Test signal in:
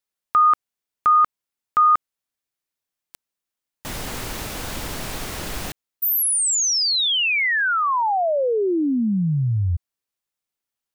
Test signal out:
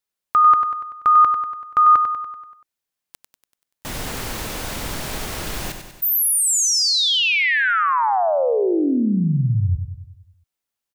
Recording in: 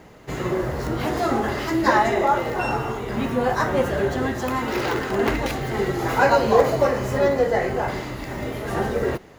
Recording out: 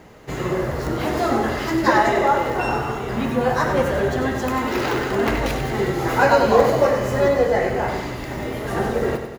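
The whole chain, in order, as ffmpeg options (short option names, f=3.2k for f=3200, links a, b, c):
-af "aecho=1:1:96|192|288|384|480|576|672:0.398|0.223|0.125|0.0699|0.0392|0.0219|0.0123,volume=1dB"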